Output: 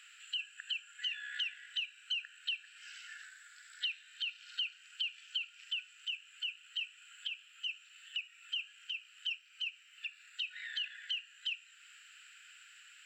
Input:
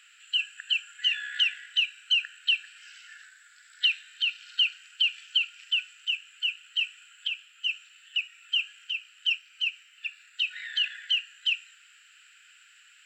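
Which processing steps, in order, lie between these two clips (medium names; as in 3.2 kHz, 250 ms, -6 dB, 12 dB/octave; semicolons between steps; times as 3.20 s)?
compression 2:1, threshold -43 dBFS, peak gain reduction 13 dB; trim -1 dB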